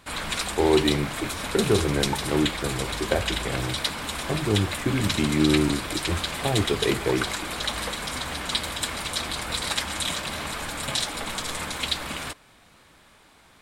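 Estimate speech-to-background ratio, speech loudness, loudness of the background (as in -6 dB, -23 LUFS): 2.5 dB, -26.0 LUFS, -28.5 LUFS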